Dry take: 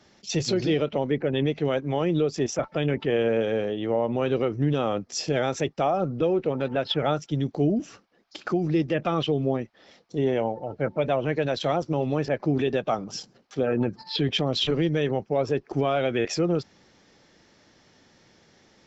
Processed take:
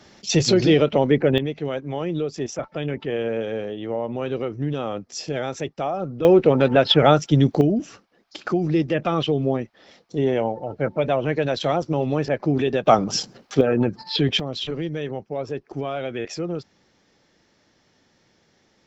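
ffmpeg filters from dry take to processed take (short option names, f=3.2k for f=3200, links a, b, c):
-af "asetnsamples=n=441:p=0,asendcmd='1.38 volume volume -2dB;6.25 volume volume 10dB;7.61 volume volume 3dB;12.86 volume volume 11dB;13.61 volume volume 4.5dB;14.4 volume volume -4dB',volume=7.5dB"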